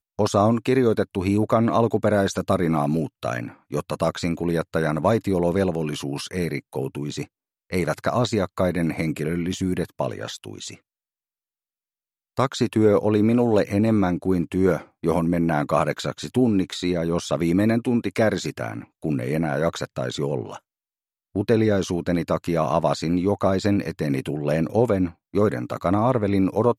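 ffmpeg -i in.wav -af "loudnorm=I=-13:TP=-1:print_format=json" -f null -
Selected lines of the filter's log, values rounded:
"input_i" : "-23.0",
"input_tp" : "-5.5",
"input_lra" : "4.8",
"input_thresh" : "-33.1",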